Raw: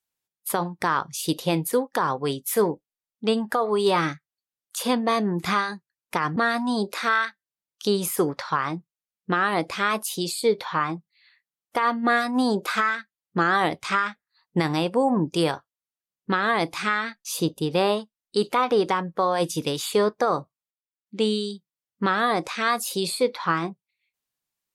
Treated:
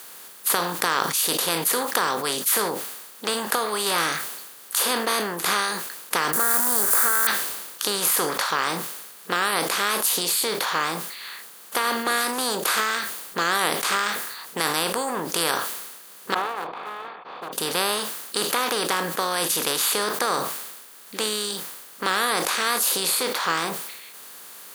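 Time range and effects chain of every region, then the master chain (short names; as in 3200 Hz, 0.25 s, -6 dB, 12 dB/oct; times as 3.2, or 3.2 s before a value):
6.33–7.27 switching spikes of -23 dBFS + EQ curve 1100 Hz 0 dB, 1500 Hz +9 dB, 2700 Hz -28 dB, 4000 Hz -24 dB, 7800 Hz +8 dB + compressor 2:1, threshold -24 dBFS
16.34–17.53 minimum comb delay 2.3 ms + vocal tract filter a + Doppler distortion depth 0.24 ms
whole clip: per-bin compression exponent 0.4; tilt +3.5 dB/oct; sustainer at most 45 dB/s; gain -8 dB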